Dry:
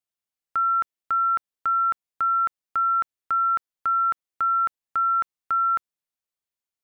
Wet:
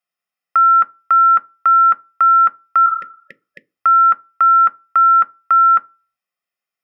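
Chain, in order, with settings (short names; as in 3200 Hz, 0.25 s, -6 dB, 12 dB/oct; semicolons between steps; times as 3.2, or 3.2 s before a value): spectral repair 2.89–3.62, 600–1700 Hz both; reverb RT60 0.30 s, pre-delay 3 ms, DRR 11.5 dB; gain +1 dB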